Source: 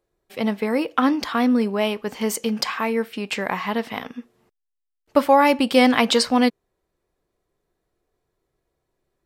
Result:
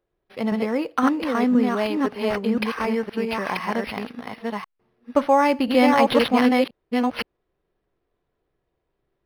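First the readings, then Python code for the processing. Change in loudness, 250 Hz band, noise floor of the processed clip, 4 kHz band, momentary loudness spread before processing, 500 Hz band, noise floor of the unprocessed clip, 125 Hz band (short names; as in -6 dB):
-1.0 dB, +0.5 dB, -77 dBFS, -5.0 dB, 11 LU, 0.0 dB, -79 dBFS, +0.5 dB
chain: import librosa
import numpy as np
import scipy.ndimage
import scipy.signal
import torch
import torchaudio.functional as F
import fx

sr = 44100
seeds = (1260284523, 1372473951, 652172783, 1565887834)

y = fx.reverse_delay(x, sr, ms=516, wet_db=-2.0)
y = np.interp(np.arange(len(y)), np.arange(len(y))[::6], y[::6])
y = F.gain(torch.from_numpy(y), -2.0).numpy()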